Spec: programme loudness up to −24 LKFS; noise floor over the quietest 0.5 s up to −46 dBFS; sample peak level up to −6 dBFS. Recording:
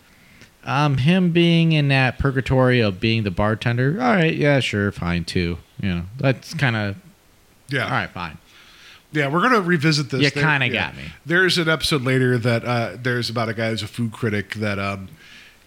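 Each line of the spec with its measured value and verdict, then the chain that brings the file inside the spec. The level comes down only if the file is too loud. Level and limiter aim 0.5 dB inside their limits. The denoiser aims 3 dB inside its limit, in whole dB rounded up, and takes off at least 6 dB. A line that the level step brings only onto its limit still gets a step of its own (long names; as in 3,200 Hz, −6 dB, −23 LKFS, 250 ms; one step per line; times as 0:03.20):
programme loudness −20.0 LKFS: out of spec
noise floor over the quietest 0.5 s −54 dBFS: in spec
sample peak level −5.5 dBFS: out of spec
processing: level −4.5 dB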